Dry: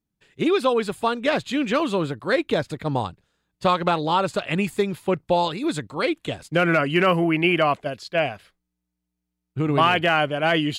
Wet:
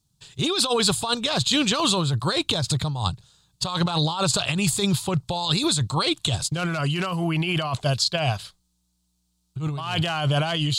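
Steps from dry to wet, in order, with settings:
graphic EQ with 10 bands 125 Hz +11 dB, 250 Hz −10 dB, 500 Hz −7 dB, 1,000 Hz +4 dB, 2,000 Hz −12 dB, 4,000 Hz +11 dB, 8,000 Hz +10 dB
compressor whose output falls as the input rises −28 dBFS, ratio −1
level +4.5 dB

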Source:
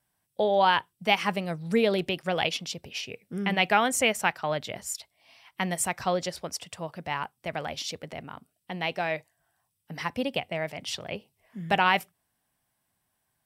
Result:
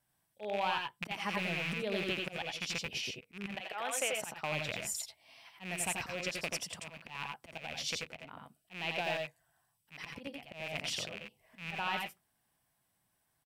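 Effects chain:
loose part that buzzes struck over −42 dBFS, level −18 dBFS
0:03.51–0:04.13: Chebyshev high-pass filter 520 Hz, order 2
volume swells 302 ms
downward compressor 3 to 1, threshold −31 dBFS, peak gain reduction 10.5 dB
multi-tap delay 85/91/99 ms −4.5/−10/−9 dB
level −3 dB

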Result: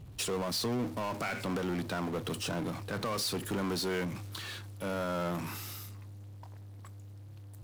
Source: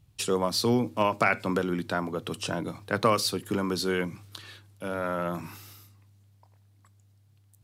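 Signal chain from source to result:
brickwall limiter −20 dBFS, peak gain reduction 10 dB
power curve on the samples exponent 0.5
one half of a high-frequency compander decoder only
level −7 dB

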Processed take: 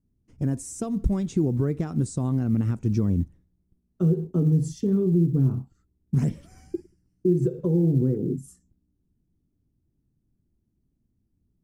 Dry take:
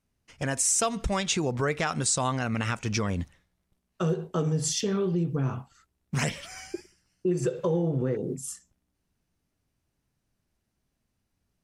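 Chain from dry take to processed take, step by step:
drawn EQ curve 330 Hz 0 dB, 550 Hz −15 dB, 2,800 Hz −29 dB, 12,000 Hz −18 dB
floating-point word with a short mantissa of 6 bits
level +7 dB

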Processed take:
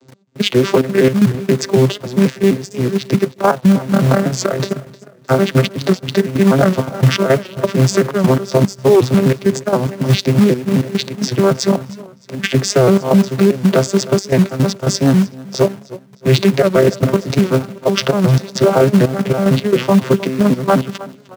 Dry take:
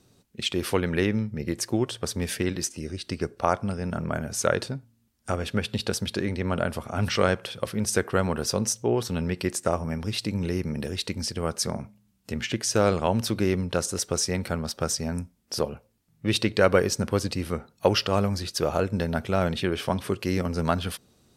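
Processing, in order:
vocoder with an arpeggio as carrier bare fifth, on C3, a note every 125 ms
gate pattern "x.xxxx.x." 111 BPM −12 dB
in parallel at −6 dB: log-companded quantiser 4 bits
on the sum: high-pass filter 220 Hz 6 dB per octave
on a send: repeating echo 309 ms, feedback 39%, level −21 dB
on the sum: boost into a limiter +19.5 dB
wow of a warped record 78 rpm, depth 100 cents
level −1 dB

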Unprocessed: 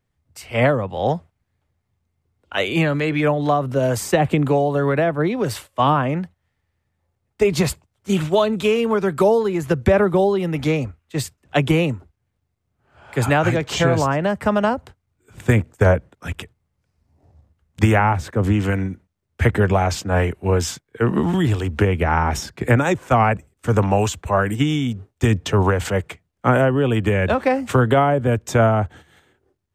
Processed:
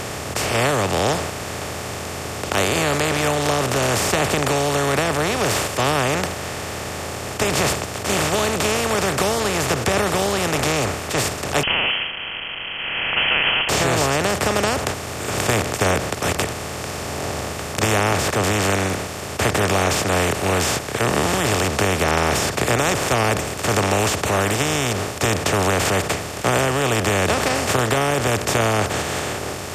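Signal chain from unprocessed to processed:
compressor on every frequency bin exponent 0.2
high-shelf EQ 2,500 Hz +11.5 dB
0:11.63–0:13.69: voice inversion scrambler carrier 3,200 Hz
level −12.5 dB

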